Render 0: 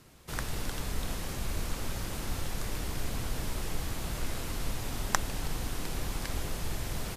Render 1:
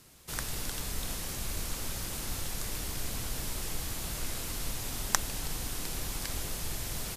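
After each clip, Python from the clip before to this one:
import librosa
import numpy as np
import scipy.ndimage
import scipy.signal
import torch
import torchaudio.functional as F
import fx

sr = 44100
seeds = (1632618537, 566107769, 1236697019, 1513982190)

y = fx.high_shelf(x, sr, hz=3400.0, db=10.0)
y = y * librosa.db_to_amplitude(-3.5)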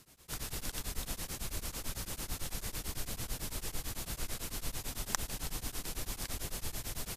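y = x * np.abs(np.cos(np.pi * 9.0 * np.arange(len(x)) / sr))
y = y * librosa.db_to_amplitude(-1.0)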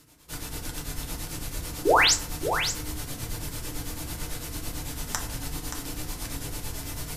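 y = fx.spec_paint(x, sr, seeds[0], shape='rise', start_s=1.85, length_s=0.29, low_hz=320.0, high_hz=8500.0, level_db=-23.0)
y = y + 10.0 ** (-8.0 / 20.0) * np.pad(y, (int(577 * sr / 1000.0), 0))[:len(y)]
y = fx.rev_fdn(y, sr, rt60_s=0.46, lf_ratio=1.6, hf_ratio=0.55, size_ms=20.0, drr_db=0.0)
y = y * librosa.db_to_amplitude(1.5)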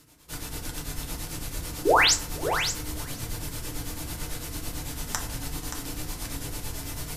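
y = x + 10.0 ** (-21.0 / 20.0) * np.pad(x, (int(486 * sr / 1000.0), 0))[:len(x)]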